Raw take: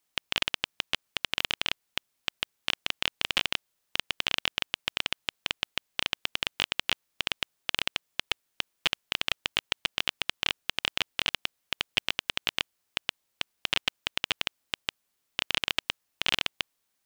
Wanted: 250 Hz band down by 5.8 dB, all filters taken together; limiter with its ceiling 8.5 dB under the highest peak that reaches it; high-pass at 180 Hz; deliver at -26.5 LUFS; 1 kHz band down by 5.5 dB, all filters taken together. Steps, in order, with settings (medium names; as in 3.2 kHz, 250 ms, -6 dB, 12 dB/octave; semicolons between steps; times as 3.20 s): high-pass 180 Hz; peaking EQ 250 Hz -6 dB; peaking EQ 1 kHz -7 dB; trim +10.5 dB; peak limiter -3.5 dBFS